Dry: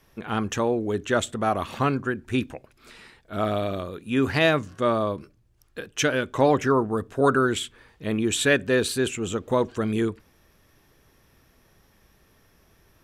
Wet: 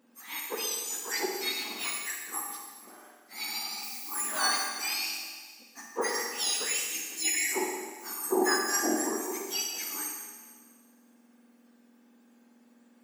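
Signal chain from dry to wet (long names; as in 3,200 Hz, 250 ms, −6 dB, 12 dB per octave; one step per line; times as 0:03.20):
frequency axis turned over on the octave scale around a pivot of 1,700 Hz
four-comb reverb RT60 1.6 s, DRR 1 dB
0:03.82–0:04.68: background noise violet −36 dBFS
level −6 dB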